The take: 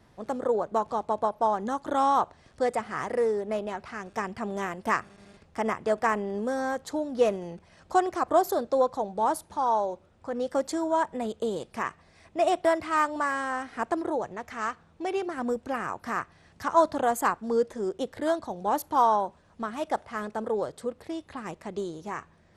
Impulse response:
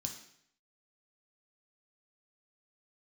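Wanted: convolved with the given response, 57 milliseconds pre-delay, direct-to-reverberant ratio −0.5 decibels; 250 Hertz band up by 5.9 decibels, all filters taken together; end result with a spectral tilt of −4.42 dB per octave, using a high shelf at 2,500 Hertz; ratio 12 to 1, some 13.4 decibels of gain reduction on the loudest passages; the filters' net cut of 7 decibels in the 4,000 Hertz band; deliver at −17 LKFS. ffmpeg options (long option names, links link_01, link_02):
-filter_complex "[0:a]equalizer=frequency=250:width_type=o:gain=7.5,highshelf=frequency=2500:gain=-6,equalizer=frequency=4000:width_type=o:gain=-4,acompressor=threshold=-29dB:ratio=12,asplit=2[link_01][link_02];[1:a]atrim=start_sample=2205,adelay=57[link_03];[link_02][link_03]afir=irnorm=-1:irlink=0,volume=3.5dB[link_04];[link_01][link_04]amix=inputs=2:normalize=0,volume=12.5dB"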